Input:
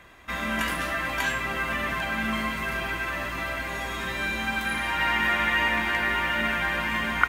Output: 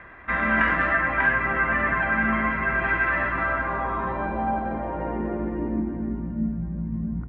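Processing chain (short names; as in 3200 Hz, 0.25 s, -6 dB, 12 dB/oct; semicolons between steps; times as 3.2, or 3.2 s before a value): high shelf 3000 Hz -11.5 dB; low-pass sweep 1800 Hz -> 170 Hz, 3.23–6.63; 0.97–2.84 air absorption 220 m; gain +4.5 dB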